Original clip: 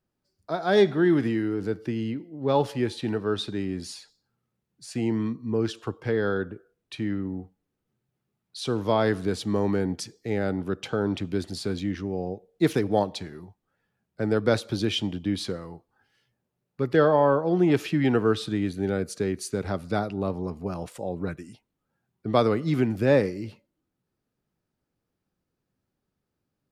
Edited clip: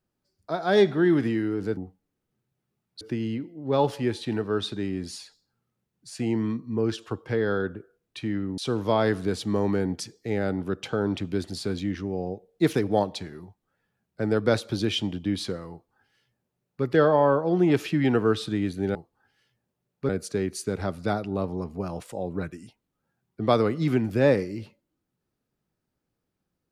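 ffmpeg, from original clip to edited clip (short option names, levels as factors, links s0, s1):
-filter_complex "[0:a]asplit=6[s0][s1][s2][s3][s4][s5];[s0]atrim=end=1.772[s6];[s1]atrim=start=7.338:end=8.582[s7];[s2]atrim=start=1.768:end=7.342[s8];[s3]atrim=start=8.578:end=18.952[s9];[s4]atrim=start=15.708:end=16.852[s10];[s5]atrim=start=18.948[s11];[s6][s7]acrossfade=d=0.004:c1=hsin:c2=hsin[s12];[s12][s8]acrossfade=d=0.004:c1=hsin:c2=hsin[s13];[s13][s9]acrossfade=d=0.004:c1=hsin:c2=hsin[s14];[s14][s10]acrossfade=d=0.004:c1=hsin:c2=hsin[s15];[s15][s11]acrossfade=d=0.004:c1=hsin:c2=hsin"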